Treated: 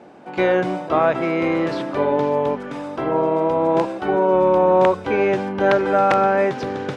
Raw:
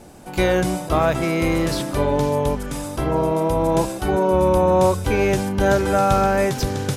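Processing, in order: integer overflow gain 6.5 dB; band-pass 250–2400 Hz; trim +2 dB

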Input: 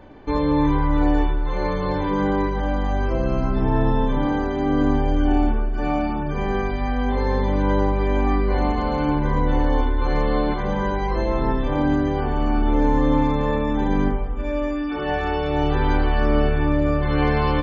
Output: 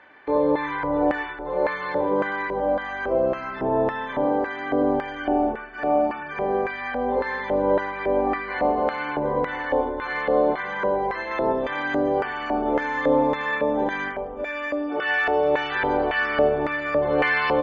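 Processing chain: treble shelf 3.5 kHz +2.5 dB, from 11.31 s +11.5 dB; LFO band-pass square 1.8 Hz 580–1800 Hz; trim +8 dB

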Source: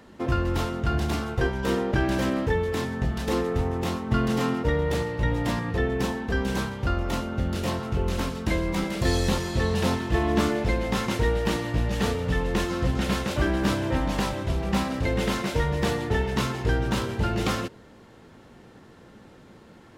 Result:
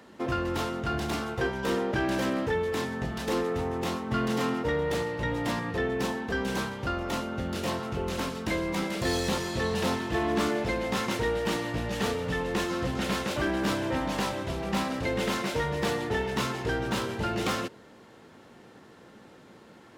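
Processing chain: tracing distortion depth 0.027 ms; high-pass 220 Hz 6 dB/octave; saturation -18.5 dBFS, distortion -21 dB

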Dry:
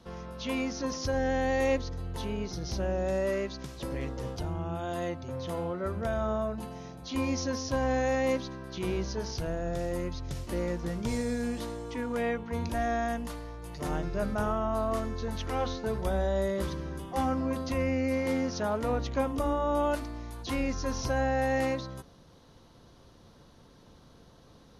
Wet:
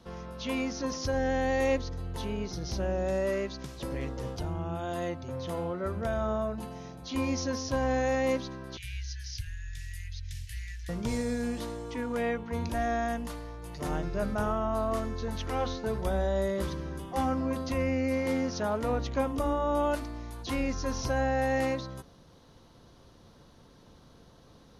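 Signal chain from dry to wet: 8.77–10.89 s: Chebyshev band-stop 120–1700 Hz, order 5

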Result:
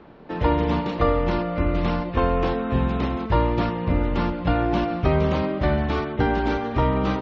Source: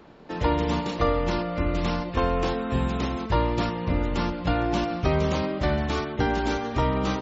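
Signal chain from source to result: distance through air 230 m; trim +3.5 dB

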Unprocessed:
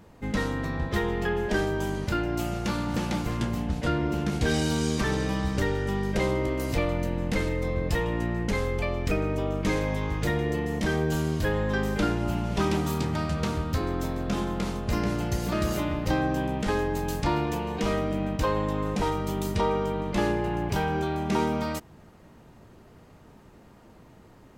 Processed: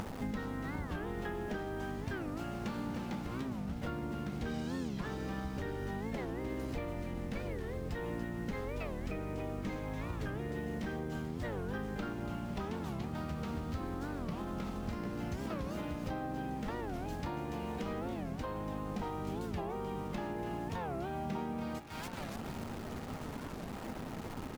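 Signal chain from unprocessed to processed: treble shelf 8.8 kHz -6 dB; on a send: feedback echo behind a high-pass 286 ms, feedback 36%, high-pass 1.5 kHz, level -8.5 dB; on the sum: upward compressor, threshold -35 dBFS; treble shelf 4.2 kHz -7 dB; hum notches 60/120/180/240/300/360/420 Hz; in parallel at -3.5 dB: bit crusher 7-bit; on the sum: small resonant body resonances 240/800/1300 Hz, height 7 dB, ringing for 75 ms; compression 10:1, threshold -34 dBFS, peak gain reduction 18.5 dB; delay 1189 ms -14.5 dB; harmony voices -4 st -10 dB; warped record 45 rpm, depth 250 cents; trim -2 dB

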